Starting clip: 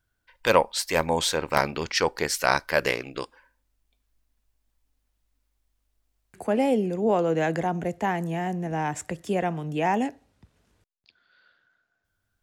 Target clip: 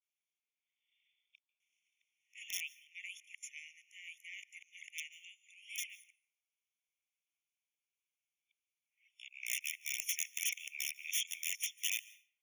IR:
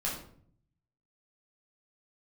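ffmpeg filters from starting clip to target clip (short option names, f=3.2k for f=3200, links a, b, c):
-filter_complex "[0:a]areverse,aderivative,bandreject=f=50:t=h:w=6,bandreject=f=100:t=h:w=6,bandreject=f=150:t=h:w=6,bandreject=f=200:t=h:w=6,bandreject=f=250:t=h:w=6,bandreject=f=300:t=h:w=6,bandreject=f=350:t=h:w=6,aeval=exprs='(mod(10.6*val(0)+1,2)-1)/10.6':c=same,asplit=3[a][b][c];[a]bandpass=f=300:t=q:w=8,volume=0dB[d];[b]bandpass=f=870:t=q:w=8,volume=-6dB[e];[c]bandpass=f=2.24k:t=q:w=8,volume=-9dB[f];[d][e][f]amix=inputs=3:normalize=0,aeval=exprs='(mod(200*val(0)+1,2)-1)/200':c=same,aexciter=amount=6.1:drive=7.3:freq=2k,asplit=2[g][h];[1:a]atrim=start_sample=2205,adelay=142[i];[h][i]afir=irnorm=-1:irlink=0,volume=-25.5dB[j];[g][j]amix=inputs=2:normalize=0,afftfilt=real='re*eq(mod(floor(b*sr/1024/1800),2),1)':imag='im*eq(mod(floor(b*sr/1024/1800),2),1)':win_size=1024:overlap=0.75,volume=2.5dB"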